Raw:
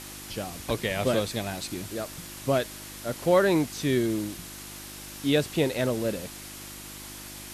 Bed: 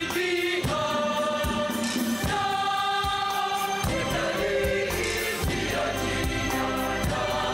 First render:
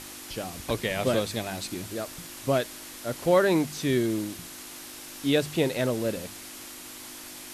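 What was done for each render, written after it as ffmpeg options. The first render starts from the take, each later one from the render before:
-af "bandreject=f=50:t=h:w=4,bandreject=f=100:t=h:w=4,bandreject=f=150:t=h:w=4,bandreject=f=200:t=h:w=4"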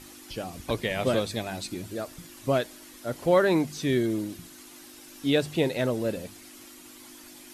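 -af "afftdn=nr=9:nf=-43"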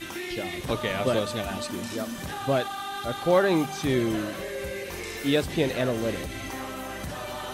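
-filter_complex "[1:a]volume=-8.5dB[a];[0:a][a]amix=inputs=2:normalize=0"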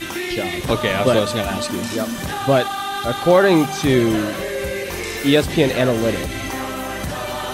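-af "volume=9dB,alimiter=limit=-3dB:level=0:latency=1"

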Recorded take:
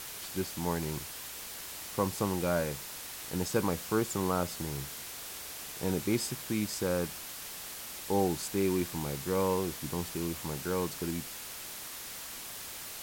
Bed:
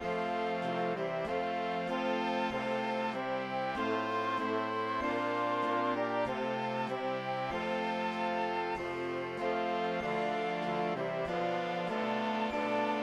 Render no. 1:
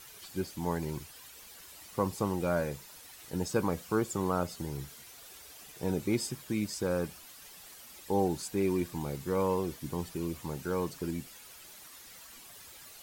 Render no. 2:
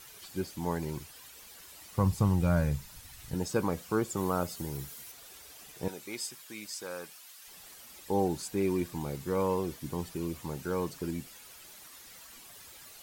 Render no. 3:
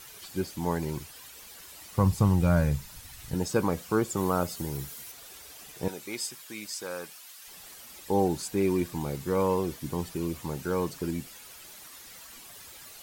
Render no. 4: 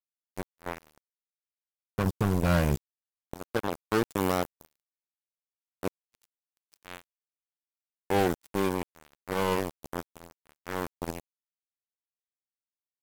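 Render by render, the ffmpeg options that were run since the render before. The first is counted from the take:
-af "afftdn=nr=11:nf=-43"
-filter_complex "[0:a]asplit=3[a][b][c];[a]afade=t=out:st=1.97:d=0.02[d];[b]asubboost=boost=11.5:cutoff=130,afade=t=in:st=1.97:d=0.02,afade=t=out:st=3.33:d=0.02[e];[c]afade=t=in:st=3.33:d=0.02[f];[d][e][f]amix=inputs=3:normalize=0,asettb=1/sr,asplit=3[g][h][i];[g]atrim=end=4.174[j];[h]atrim=start=4.17:end=5.12,asetpts=PTS-STARTPTS,afade=t=in:d=0.004:c=qsin,afade=t=out:st=0.946:d=0.004:c=qsin,highshelf=f=9.4k:g=8.5[k];[i]atrim=start=5.116[l];[j][k]acrossfade=d=0.004:c1=hsin:c2=qsin[m];[m][l]acrossfade=d=0.004:c1=qsin:c2=hsin,asettb=1/sr,asplit=3[n][o][p];[n]atrim=end=5.884[q];[o]atrim=start=5.88:end=7.48,asetpts=PTS-STARTPTS,afade=t=in:d=0.004:c=qsin,afade=t=out:st=1.596:d=0.004:c=qsin,highpass=f=1.4k:p=1[r];[p]atrim=start=7.476[s];[q][r]acrossfade=d=0.004:c1=hsin:c2=qsin[t];[t][s]acrossfade=d=0.004:c1=qsin:c2=hsin"
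-af "volume=3.5dB"
-af "tremolo=f=0.72:d=0.41,acrusher=bits=3:mix=0:aa=0.5"

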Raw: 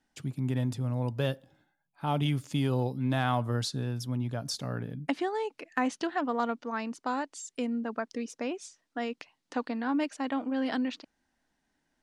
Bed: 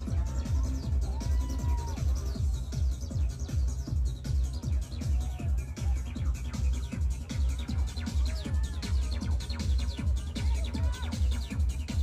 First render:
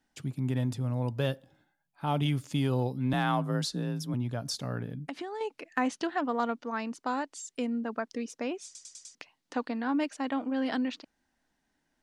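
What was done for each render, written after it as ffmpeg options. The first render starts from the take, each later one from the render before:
-filter_complex "[0:a]asettb=1/sr,asplit=3[a][b][c];[a]atrim=end=3.134[d];[b]atrim=start=3.13:end=4.14,asetpts=PTS-STARTPTS,afade=t=in:d=0.004:c=qsin,afade=t=out:st=1.006:d=0.004:c=qsin,afreqshift=38[e];[c]atrim=start=4.136[f];[d][e]acrossfade=d=0.004:c1=hsin:c2=qsin[g];[g][f]acrossfade=d=0.004:c1=qsin:c2=hsin,asettb=1/sr,asplit=3[h][i][j];[h]atrim=end=4.994[k];[i]atrim=start=4.99:end=5.41,asetpts=PTS-STARTPTS,afade=t=in:d=0.004:c=qsin,afade=t=out:st=0.416:d=0.004:c=qsin,acompressor=threshold=-33dB:ratio=12:attack=3.2:release=140:knee=1:detection=peak[l];[j]atrim=start=5.406[m];[k][l]acrossfade=d=0.004:c1=hsin:c2=qsin[n];[n][m]acrossfade=d=0.004:c1=qsin:c2=hsin,asplit=6[o][p][q][r][s][t];[o]atrim=end=8.752[u];[p]atrim=start=8.648:end=8.752[v];[q]atrim=start=8.648:end=8.752[w];[r]atrim=start=8.648:end=8.752[x];[s]atrim=start=8.648:end=8.752[y];[t]atrim=start=9.148[z];[u][v]acrossfade=d=0.004:c1=hsin:c2=hsin[aa];[aa][w]acrossfade=d=0.004:c1=hsin:c2=hsin[ab];[ab][x]acrossfade=d=0.004:c1=hsin:c2=hsin[ac];[ac][y]acrossfade=d=0.004:c1=hsin:c2=hsin[ad];[ad][z]acrossfade=d=0.004:c1=hsin:c2=hsin"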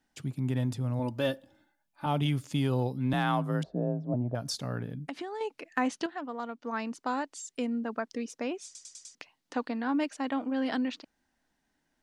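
-filter_complex "[0:a]asettb=1/sr,asplit=3[a][b][c];[a]atrim=end=0.994[d];[b]atrim=start=0.99:end=2.06,asetpts=PTS-STARTPTS,afade=t=in:d=0.004:c=qsin,afade=t=out:st=1.066:d=0.004:c=qsin,aecho=1:1:3.4:0.65,atrim=end_sample=47187[e];[c]atrim=start=2.056[f];[d][e]acrossfade=d=0.004:c1=hsin:c2=qsin[g];[g][f]acrossfade=d=0.004:c1=qsin:c2=hsin,asettb=1/sr,asplit=3[h][i][j];[h]atrim=end=3.634[k];[i]atrim=start=3.63:end=4.35,asetpts=PTS-STARTPTS,afade=t=in:d=0.004:c=qsin,afade=t=out:st=0.716:d=0.004:c=qsin,lowpass=f=650:t=q:w=7.5[l];[j]atrim=start=4.346[m];[k][l]acrossfade=d=0.004:c1=hsin:c2=qsin[n];[n][m]acrossfade=d=0.004:c1=qsin:c2=hsin,asplit=3[o][p][q];[o]atrim=end=6.062[r];[p]atrim=start=6.058:end=6.642,asetpts=PTS-STARTPTS,volume=-7.5dB[s];[q]atrim=start=6.638[t];[r][s]acrossfade=d=0.004:c1=hsin:c2=hsin[u];[u][t]acrossfade=d=0.004:c1=hsin:c2=hsin"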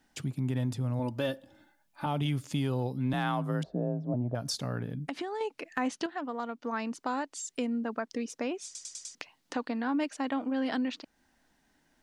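-filter_complex "[0:a]asplit=2[a][b];[b]alimiter=limit=-21dB:level=0:latency=1,volume=2.5dB[c];[a][c]amix=inputs=2:normalize=0,acompressor=threshold=-42dB:ratio=1.5"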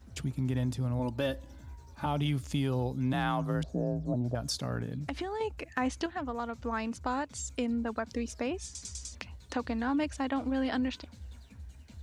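-filter_complex "[1:a]volume=-18dB[a];[0:a][a]amix=inputs=2:normalize=0"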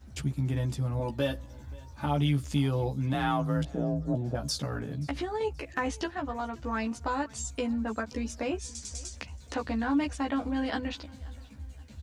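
-filter_complex "[0:a]asplit=2[a][b];[b]adelay=14,volume=-3dB[c];[a][c]amix=inputs=2:normalize=0,aecho=1:1:528|1056|1584:0.0668|0.0274|0.0112"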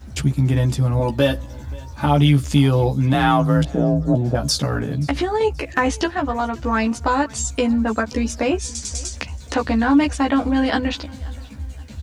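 -af "volume=12dB"

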